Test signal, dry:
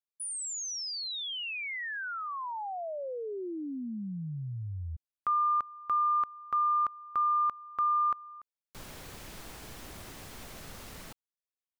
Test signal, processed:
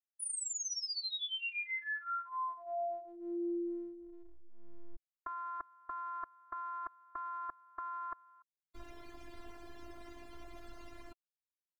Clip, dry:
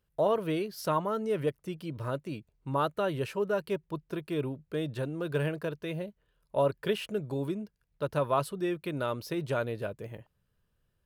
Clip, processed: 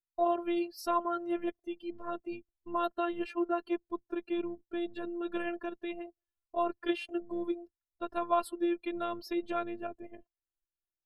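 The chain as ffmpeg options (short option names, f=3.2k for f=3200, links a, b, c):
-af "afftdn=nr=23:nf=-49,afftfilt=real='hypot(re,im)*cos(PI*b)':imag='0':win_size=512:overlap=0.75,volume=1.5dB"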